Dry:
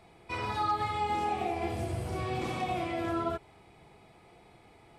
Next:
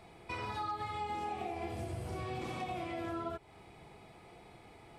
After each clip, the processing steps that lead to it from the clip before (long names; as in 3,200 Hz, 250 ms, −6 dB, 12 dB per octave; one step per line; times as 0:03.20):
downward compressor 2.5 to 1, threshold −42 dBFS, peak gain reduction 11 dB
level +1.5 dB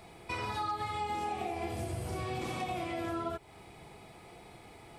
high-shelf EQ 6,100 Hz +7.5 dB
level +3 dB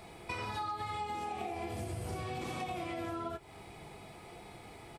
downward compressor, threshold −37 dBFS, peak gain reduction 6.5 dB
double-tracking delay 20 ms −13 dB
level +1.5 dB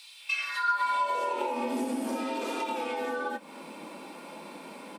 frequency shifter +160 Hz
high-pass filter sweep 3,600 Hz → 110 Hz, 0:00.16–0:02.05
level +6 dB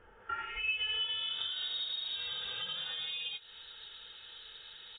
voice inversion scrambler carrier 4,000 Hz
level −7 dB